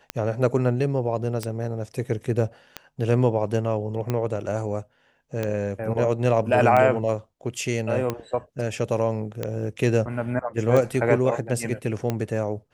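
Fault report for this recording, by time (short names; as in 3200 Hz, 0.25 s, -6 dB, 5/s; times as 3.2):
tick 45 rpm -12 dBFS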